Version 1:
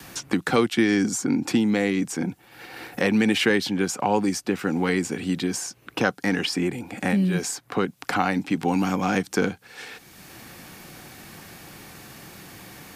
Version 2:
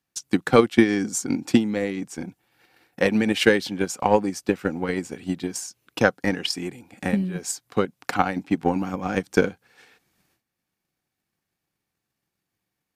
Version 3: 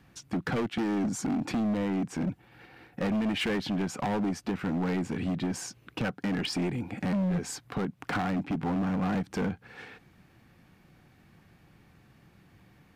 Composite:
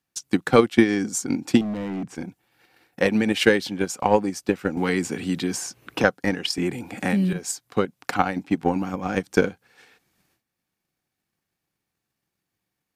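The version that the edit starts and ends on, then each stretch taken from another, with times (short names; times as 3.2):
2
1.61–2.15 from 3
4.77–6.04 from 1
6.58–7.33 from 1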